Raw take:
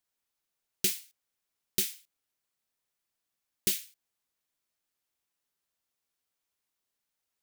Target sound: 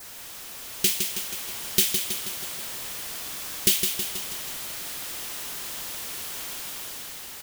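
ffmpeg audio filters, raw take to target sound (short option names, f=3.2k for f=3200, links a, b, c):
-filter_complex "[0:a]aeval=exprs='val(0)+0.5*0.015*sgn(val(0))':c=same,adynamicequalizer=threshold=0.00178:dfrequency=3100:dqfactor=3.9:tfrequency=3100:tqfactor=3.9:attack=5:release=100:ratio=0.375:range=2.5:mode=boostabove:tftype=bell,dynaudnorm=f=190:g=9:m=5.5dB,asplit=2[a][b];[b]aecho=0:1:161|322|483|644|805|966|1127|1288:0.501|0.296|0.174|0.103|0.0607|0.0358|0.0211|0.0125[c];[a][c]amix=inputs=2:normalize=0,volume=1.5dB"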